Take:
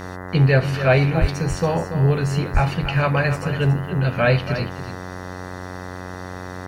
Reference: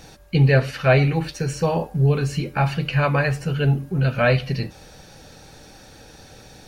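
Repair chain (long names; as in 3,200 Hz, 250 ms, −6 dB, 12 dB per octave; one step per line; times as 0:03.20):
hum removal 91.4 Hz, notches 22
0:01.20–0:01.32: high-pass filter 140 Hz 24 dB per octave
0:02.53–0:02.65: high-pass filter 140 Hz 24 dB per octave
echo removal 284 ms −10.5 dB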